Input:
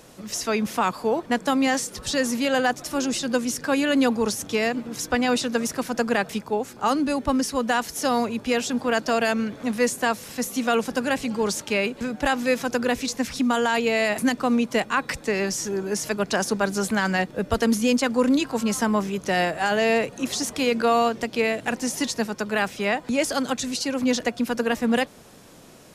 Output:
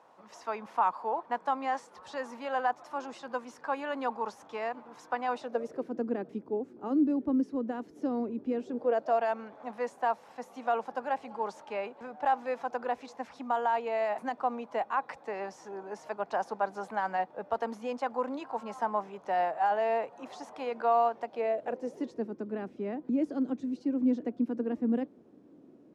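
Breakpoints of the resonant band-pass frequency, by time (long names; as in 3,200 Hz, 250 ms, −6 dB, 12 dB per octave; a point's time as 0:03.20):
resonant band-pass, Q 3.1
0:05.31 920 Hz
0:05.96 320 Hz
0:08.57 320 Hz
0:09.21 820 Hz
0:21.21 820 Hz
0:22.38 300 Hz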